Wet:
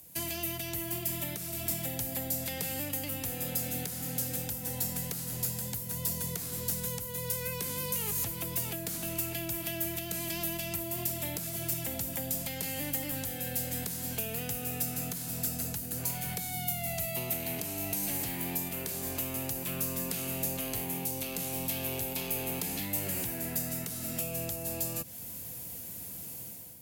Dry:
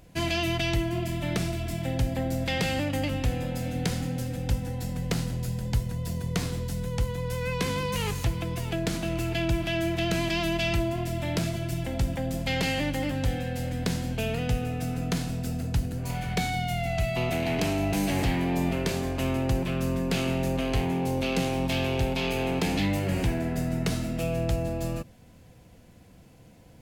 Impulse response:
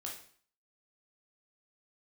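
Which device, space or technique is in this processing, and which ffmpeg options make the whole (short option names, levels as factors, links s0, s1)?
FM broadcast chain: -filter_complex "[0:a]highpass=75,dynaudnorm=f=660:g=3:m=3.76,acrossover=split=140|650|2100|7900[s0][s1][s2][s3][s4];[s0]acompressor=threshold=0.0158:ratio=4[s5];[s1]acompressor=threshold=0.0282:ratio=4[s6];[s2]acompressor=threshold=0.0126:ratio=4[s7];[s3]acompressor=threshold=0.00708:ratio=4[s8];[s4]acompressor=threshold=0.00251:ratio=4[s9];[s5][s6][s7][s8][s9]amix=inputs=5:normalize=0,aemphasis=mode=production:type=50fm,alimiter=limit=0.106:level=0:latency=1:release=374,asoftclip=type=hard:threshold=0.0841,lowpass=f=15000:w=0.5412,lowpass=f=15000:w=1.3066,aemphasis=mode=production:type=50fm,volume=0.398"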